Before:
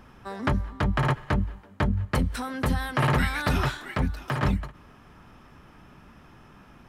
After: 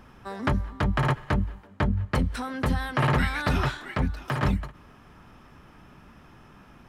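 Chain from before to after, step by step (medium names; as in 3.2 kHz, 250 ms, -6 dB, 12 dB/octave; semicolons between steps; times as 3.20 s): 1.67–4.25 s: treble shelf 9.1 kHz -9 dB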